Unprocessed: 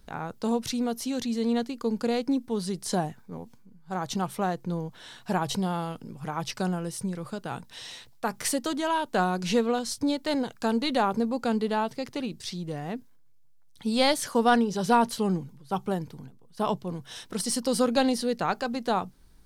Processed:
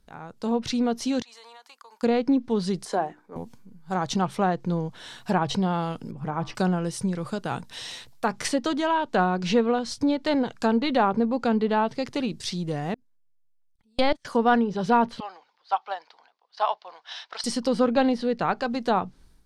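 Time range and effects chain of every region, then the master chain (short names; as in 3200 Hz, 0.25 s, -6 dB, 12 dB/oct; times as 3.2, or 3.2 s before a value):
1.22–2.03 ladder high-pass 830 Hz, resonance 50% + compressor 12:1, threshold -48 dBFS
2.85–3.36 three-band isolator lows -19 dB, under 330 Hz, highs -12 dB, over 2100 Hz + notches 60/120/180/240/300/360 Hz
6.11–6.55 LPF 1100 Hz 6 dB/oct + de-hum 106.2 Hz, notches 32
12.94–14.25 low shelf 86 Hz +9.5 dB + level quantiser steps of 22 dB + gate -34 dBFS, range -23 dB
15.2–17.44 elliptic band-pass 710–4800 Hz, stop band 80 dB + transient shaper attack +4 dB, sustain 0 dB
whole clip: treble ducked by the level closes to 2700 Hz, closed at -22 dBFS; AGC gain up to 12.5 dB; gain -7.5 dB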